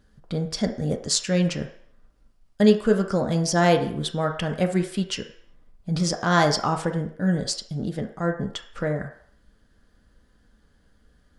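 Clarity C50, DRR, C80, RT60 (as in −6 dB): 9.0 dB, 3.0 dB, 13.0 dB, 0.65 s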